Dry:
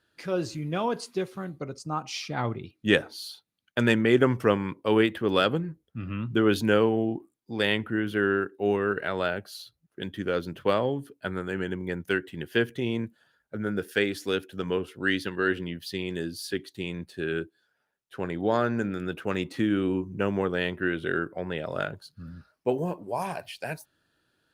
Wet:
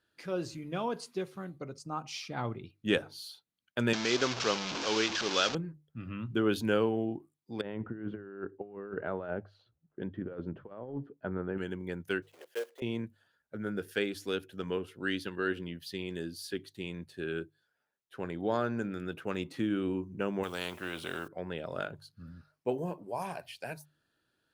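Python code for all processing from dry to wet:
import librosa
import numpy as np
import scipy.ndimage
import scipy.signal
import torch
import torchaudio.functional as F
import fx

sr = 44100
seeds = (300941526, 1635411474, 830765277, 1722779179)

y = fx.chain(x, sr, fx.delta_mod(bps=32000, step_db=-22.0),
    fx.tilt_eq(slope=3.0), at=(3.93, 5.55))
y = fx.chain(y, sr, fx.lowpass(hz=1100.0, slope=12),
    fx.over_compress(threshold_db=-31.0, ratio=-0.5), at=(7.61, 11.58))
y = fx.chain(y, sr, fx.block_float(bits=3),
    fx.ladder_highpass(hz=470.0, resonance_pct=70), at=(12.22, 12.82))
y = fx.chain(y, sr, fx.low_shelf(hz=110.0, db=-11.5),
    fx.quant_dither(seeds[0], bits=12, dither='triangular'),
    fx.spectral_comp(ratio=2.0), at=(20.43, 21.28))
y = fx.hum_notches(y, sr, base_hz=50, count=3)
y = fx.dynamic_eq(y, sr, hz=1900.0, q=5.7, threshold_db=-47.0, ratio=4.0, max_db=-6)
y = y * librosa.db_to_amplitude(-6.0)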